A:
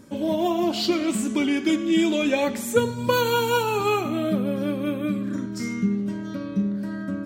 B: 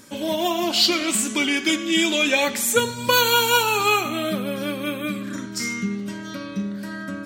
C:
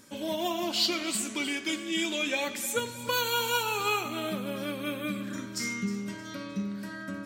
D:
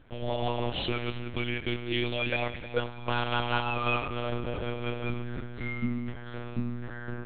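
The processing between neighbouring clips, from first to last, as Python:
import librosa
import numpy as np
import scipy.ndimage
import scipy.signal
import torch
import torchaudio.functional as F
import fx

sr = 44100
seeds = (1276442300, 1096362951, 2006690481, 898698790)

y1 = fx.tilt_shelf(x, sr, db=-7.5, hz=970.0)
y1 = y1 * librosa.db_to_amplitude(3.5)
y2 = fx.rider(y1, sr, range_db=3, speed_s=2.0)
y2 = fx.echo_feedback(y2, sr, ms=310, feedback_pct=40, wet_db=-14.5)
y2 = y2 * librosa.db_to_amplitude(-9.0)
y3 = fx.air_absorb(y2, sr, metres=180.0)
y3 = fx.lpc_monotone(y3, sr, seeds[0], pitch_hz=120.0, order=10)
y3 = y3 * librosa.db_to_amplitude(2.0)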